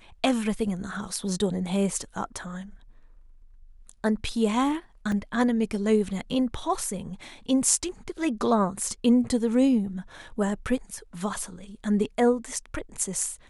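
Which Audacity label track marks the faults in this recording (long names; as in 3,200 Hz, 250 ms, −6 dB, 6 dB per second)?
5.120000	5.120000	drop-out 2.5 ms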